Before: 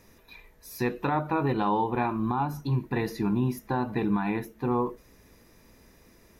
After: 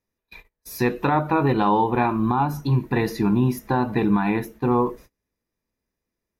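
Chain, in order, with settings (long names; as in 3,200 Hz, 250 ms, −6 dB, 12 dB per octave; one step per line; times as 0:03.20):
noise gate −48 dBFS, range −33 dB
level +6.5 dB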